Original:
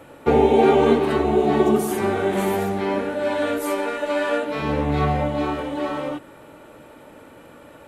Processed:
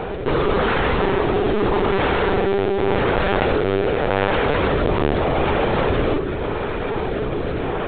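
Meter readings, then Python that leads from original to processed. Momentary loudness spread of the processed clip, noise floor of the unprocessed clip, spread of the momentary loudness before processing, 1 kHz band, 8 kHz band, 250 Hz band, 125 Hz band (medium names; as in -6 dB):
5 LU, -46 dBFS, 11 LU, +2.0 dB, under -35 dB, 0.0 dB, +4.5 dB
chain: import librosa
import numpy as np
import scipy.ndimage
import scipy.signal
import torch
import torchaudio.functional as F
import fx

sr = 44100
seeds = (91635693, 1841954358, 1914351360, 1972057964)

p1 = fx.bin_compress(x, sr, power=0.4)
p2 = scipy.signal.sosfilt(scipy.signal.butter(2, 3100.0, 'lowpass', fs=sr, output='sos'), p1)
p3 = fx.low_shelf(p2, sr, hz=100.0, db=-6.0)
p4 = fx.rider(p3, sr, range_db=3, speed_s=0.5)
p5 = p3 + (p4 * librosa.db_to_amplitude(2.0))
p6 = fx.rotary(p5, sr, hz=0.85)
p7 = fx.mod_noise(p6, sr, seeds[0], snr_db=12)
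p8 = 10.0 ** (-8.0 / 20.0) * (np.abs((p7 / 10.0 ** (-8.0 / 20.0) + 3.0) % 4.0 - 2.0) - 1.0)
p9 = p8 + fx.echo_single(p8, sr, ms=85, db=-23.0, dry=0)
p10 = fx.lpc_vocoder(p9, sr, seeds[1], excitation='pitch_kept', order=16)
y = p10 * librosa.db_to_amplitude(-5.0)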